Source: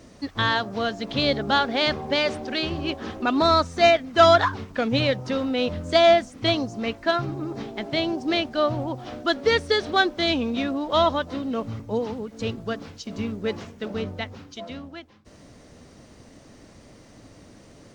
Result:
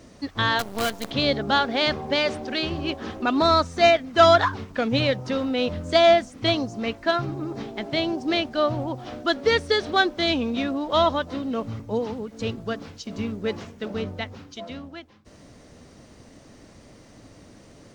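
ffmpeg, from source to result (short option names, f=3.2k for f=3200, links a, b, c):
-filter_complex "[0:a]asettb=1/sr,asplit=3[a][b][c];[a]atrim=end=0.594[d];[b]atrim=start=0.59:end=1.11,asetpts=PTS-STARTPTS,afade=t=in:d=0.004:c=qsin,afade=t=out:st=0.516:d=0.004:c=qsin,acrusher=bits=5:dc=4:mix=0:aa=0.000001[e];[c]atrim=start=1.106[f];[d][e]acrossfade=d=0.004:c1=hsin:c2=qsin[g];[g][f]acrossfade=d=0.004:c1=qsin:c2=hsin"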